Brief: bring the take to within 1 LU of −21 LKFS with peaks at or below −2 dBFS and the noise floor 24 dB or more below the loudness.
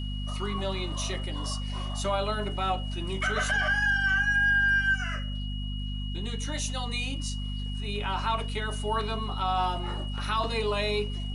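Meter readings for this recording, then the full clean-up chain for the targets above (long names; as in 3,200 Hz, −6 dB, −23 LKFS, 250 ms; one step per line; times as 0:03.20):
mains hum 50 Hz; hum harmonics up to 250 Hz; level of the hum −30 dBFS; interfering tone 2,900 Hz; level of the tone −41 dBFS; integrated loudness −28.5 LKFS; sample peak −16.0 dBFS; target loudness −21.0 LKFS
→ hum removal 50 Hz, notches 5
notch filter 2,900 Hz, Q 30
level +7.5 dB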